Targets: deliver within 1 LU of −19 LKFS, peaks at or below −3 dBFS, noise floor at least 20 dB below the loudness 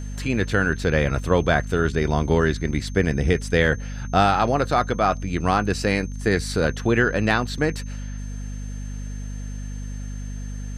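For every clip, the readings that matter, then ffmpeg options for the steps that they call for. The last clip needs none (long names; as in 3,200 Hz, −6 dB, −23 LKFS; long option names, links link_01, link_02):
mains hum 50 Hz; hum harmonics up to 250 Hz; level of the hum −29 dBFS; interfering tone 6,300 Hz; level of the tone −47 dBFS; integrated loudness −22.0 LKFS; sample peak −5.0 dBFS; target loudness −19.0 LKFS
→ -af "bandreject=frequency=50:width_type=h:width=6,bandreject=frequency=100:width_type=h:width=6,bandreject=frequency=150:width_type=h:width=6,bandreject=frequency=200:width_type=h:width=6,bandreject=frequency=250:width_type=h:width=6"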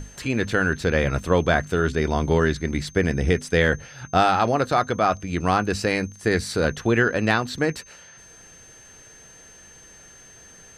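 mains hum none found; interfering tone 6,300 Hz; level of the tone −47 dBFS
→ -af "bandreject=frequency=6300:width=30"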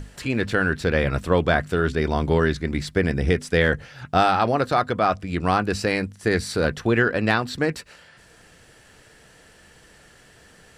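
interfering tone none found; integrated loudness −22.5 LKFS; sample peak −5.5 dBFS; target loudness −19.0 LKFS
→ -af "volume=3.5dB,alimiter=limit=-3dB:level=0:latency=1"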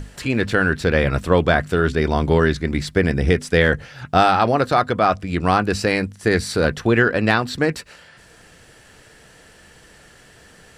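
integrated loudness −19.0 LKFS; sample peak −3.0 dBFS; background noise floor −49 dBFS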